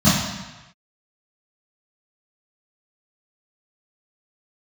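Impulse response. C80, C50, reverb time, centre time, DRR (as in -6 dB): 4.0 dB, 0.5 dB, 1.1 s, 75 ms, -14.0 dB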